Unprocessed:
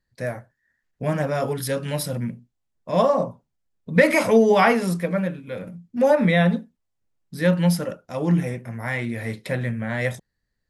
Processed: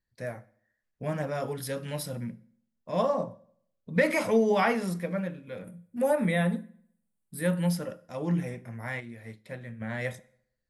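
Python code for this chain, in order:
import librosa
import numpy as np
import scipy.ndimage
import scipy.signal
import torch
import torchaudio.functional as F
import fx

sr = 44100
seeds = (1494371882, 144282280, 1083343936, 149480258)

y = fx.high_shelf_res(x, sr, hz=7300.0, db=8.5, q=3.0, at=(5.64, 7.7))
y = fx.rev_fdn(y, sr, rt60_s=0.66, lf_ratio=1.0, hf_ratio=0.85, size_ms=28.0, drr_db=16.5)
y = fx.upward_expand(y, sr, threshold_db=-34.0, expansion=1.5, at=(8.99, 9.8), fade=0.02)
y = y * librosa.db_to_amplitude(-8.0)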